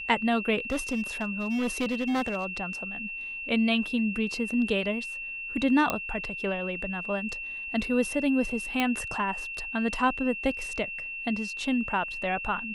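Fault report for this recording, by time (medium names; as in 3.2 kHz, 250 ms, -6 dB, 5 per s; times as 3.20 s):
whine 2.7 kHz -34 dBFS
0.70–2.46 s: clipped -24 dBFS
5.90 s: pop -11 dBFS
8.80 s: pop -12 dBFS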